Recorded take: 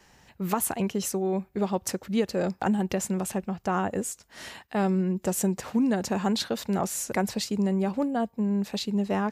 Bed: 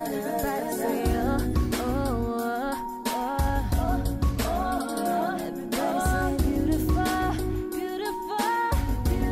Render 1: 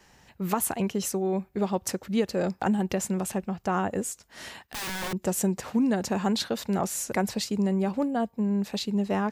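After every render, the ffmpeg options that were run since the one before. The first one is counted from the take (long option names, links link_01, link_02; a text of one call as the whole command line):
ffmpeg -i in.wav -filter_complex "[0:a]asettb=1/sr,asplit=3[link_01][link_02][link_03];[link_01]atrim=end=4.624[link_04];[link_02]atrim=start=4.62:end=5.13,asetpts=PTS-STARTPTS,afade=type=in:duration=0.004:curve=qsin,afade=type=out:start_time=0.506:duration=0.004:curve=qsin,aeval=exprs='(mod(26.6*val(0)+1,2)-1)/26.6':channel_layout=same[link_05];[link_03]atrim=start=5.126[link_06];[link_04][link_05]acrossfade=duration=0.004:curve1=hsin:curve2=qsin[link_07];[link_07][link_06]acrossfade=duration=0.004:curve1=qsin:curve2=hsin" out.wav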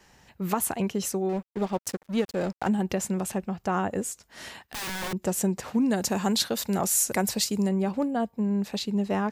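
ffmpeg -i in.wav -filter_complex "[0:a]asettb=1/sr,asplit=3[link_01][link_02][link_03];[link_01]atrim=end=1.294[link_04];[link_02]atrim=start=1.29:end=2.69,asetpts=PTS-STARTPTS,afade=type=in:duration=0.004:curve=qsin,afade=type=out:start_time=1.396:duration=0.004:curve=qsin,aeval=exprs='sgn(val(0))*max(abs(val(0))-0.01,0)':channel_layout=same[link_05];[link_03]atrim=start=2.686[link_06];[link_04][link_05]acrossfade=duration=0.004:curve1=hsin:curve2=qsin[link_07];[link_07][link_06]acrossfade=duration=0.004:curve1=qsin:curve2=hsin,asettb=1/sr,asplit=3[link_08][link_09][link_10];[link_08]atrim=end=5.904[link_11];[link_09]atrim=start=5.9:end=7.69,asetpts=PTS-STARTPTS,afade=type=in:duration=0.004:curve=qsin,afade=type=out:start_time=1.786:duration=0.004:curve=qsin,highshelf=frequency=5500:gain=12[link_12];[link_10]atrim=start=7.686[link_13];[link_11][link_12]acrossfade=duration=0.004:curve1=hsin:curve2=qsin[link_14];[link_14][link_13]acrossfade=duration=0.004:curve1=qsin:curve2=hsin" out.wav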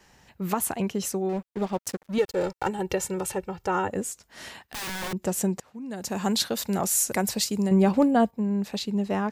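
ffmpeg -i in.wav -filter_complex "[0:a]asettb=1/sr,asplit=3[link_01][link_02][link_03];[link_01]atrim=end=2.184[link_04];[link_02]atrim=start=2.18:end=3.89,asetpts=PTS-STARTPTS,afade=type=in:duration=0.004:curve=qsin,afade=type=out:start_time=1.706:duration=0.004:curve=qsin,aecho=1:1:2.2:0.78,atrim=end_sample=75411[link_05];[link_03]atrim=start=3.886[link_06];[link_04][link_05]acrossfade=duration=0.004:curve1=hsin:curve2=qsin[link_07];[link_07][link_06]acrossfade=duration=0.004:curve1=qsin:curve2=hsin,asettb=1/sr,asplit=3[link_08][link_09][link_10];[link_08]atrim=end=7.714[link_11];[link_09]atrim=start=7.71:end=8.31,asetpts=PTS-STARTPTS,afade=type=in:duration=0.004:curve=qsin,afade=type=out:start_time=0.596:duration=0.004:curve=qsin,acontrast=79[link_12];[link_10]atrim=start=8.306[link_13];[link_11][link_12]acrossfade=duration=0.004:curve1=hsin:curve2=qsin[link_14];[link_14][link_13]acrossfade=duration=0.004:curve1=qsin:curve2=hsin,asplit=2[link_15][link_16];[link_15]atrim=end=5.6,asetpts=PTS-STARTPTS,afade=type=out:start_time=5.596:duration=0.004:curve=hsin:silence=0.1[link_17];[link_16]atrim=start=5.6,asetpts=PTS-STARTPTS,afade=type=in:duration=0.66:curve=qua:silence=0.1[link_18];[link_17][link_18]concat=n=2:v=0:a=1" out.wav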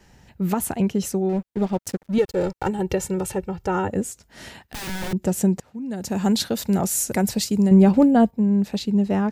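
ffmpeg -i in.wav -af "lowshelf=frequency=330:gain=10,bandreject=frequency=1100:width=9.9" out.wav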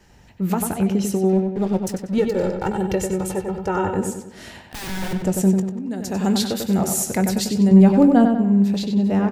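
ffmpeg -i in.wav -filter_complex "[0:a]asplit=2[link_01][link_02];[link_02]adelay=21,volume=-13dB[link_03];[link_01][link_03]amix=inputs=2:normalize=0,asplit=2[link_04][link_05];[link_05]adelay=95,lowpass=frequency=3900:poles=1,volume=-5dB,asplit=2[link_06][link_07];[link_07]adelay=95,lowpass=frequency=3900:poles=1,volume=0.48,asplit=2[link_08][link_09];[link_09]adelay=95,lowpass=frequency=3900:poles=1,volume=0.48,asplit=2[link_10][link_11];[link_11]adelay=95,lowpass=frequency=3900:poles=1,volume=0.48,asplit=2[link_12][link_13];[link_13]adelay=95,lowpass=frequency=3900:poles=1,volume=0.48,asplit=2[link_14][link_15];[link_15]adelay=95,lowpass=frequency=3900:poles=1,volume=0.48[link_16];[link_04][link_06][link_08][link_10][link_12][link_14][link_16]amix=inputs=7:normalize=0" out.wav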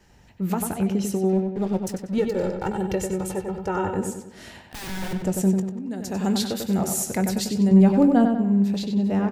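ffmpeg -i in.wav -af "volume=-3.5dB" out.wav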